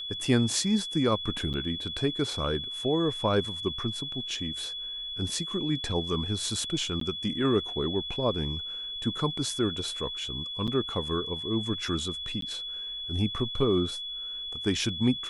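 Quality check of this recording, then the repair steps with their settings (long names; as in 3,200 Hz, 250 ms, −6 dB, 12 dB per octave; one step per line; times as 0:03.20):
whistle 3,400 Hz −34 dBFS
0:01.53–0:01.54: drop-out 8.3 ms
0:07.00–0:07.01: drop-out 13 ms
0:10.67–0:10.68: drop-out 7.1 ms
0:12.41–0:12.42: drop-out 13 ms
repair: notch filter 3,400 Hz, Q 30
repair the gap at 0:01.53, 8.3 ms
repair the gap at 0:07.00, 13 ms
repair the gap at 0:10.67, 7.1 ms
repair the gap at 0:12.41, 13 ms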